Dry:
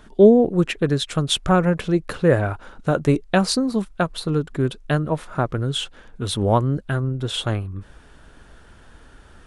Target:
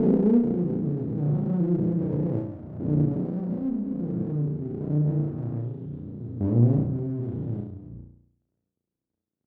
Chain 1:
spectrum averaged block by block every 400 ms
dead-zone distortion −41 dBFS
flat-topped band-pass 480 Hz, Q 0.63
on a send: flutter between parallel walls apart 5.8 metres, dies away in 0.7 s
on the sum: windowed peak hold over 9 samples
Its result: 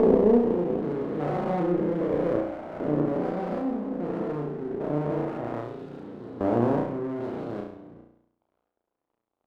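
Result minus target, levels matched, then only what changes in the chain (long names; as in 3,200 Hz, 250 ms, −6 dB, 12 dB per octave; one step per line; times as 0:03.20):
125 Hz band −9.0 dB
change: flat-topped band-pass 170 Hz, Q 0.63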